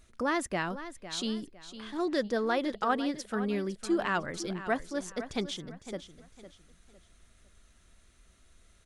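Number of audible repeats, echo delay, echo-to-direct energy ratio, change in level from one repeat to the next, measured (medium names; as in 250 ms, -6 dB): 3, 506 ms, -12.5 dB, -10.0 dB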